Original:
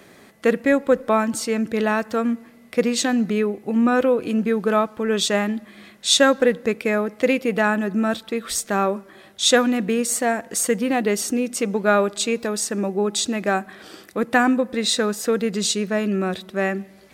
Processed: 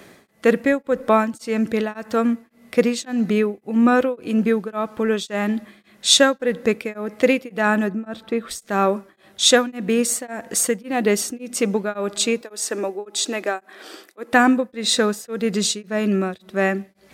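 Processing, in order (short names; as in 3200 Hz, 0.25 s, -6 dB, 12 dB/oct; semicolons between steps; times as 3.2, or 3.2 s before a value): 7.89–8.51 high shelf 2900 Hz -11 dB; 12.41–14.33 HPF 290 Hz 24 dB/oct; beating tremolo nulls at 1.8 Hz; gain +3 dB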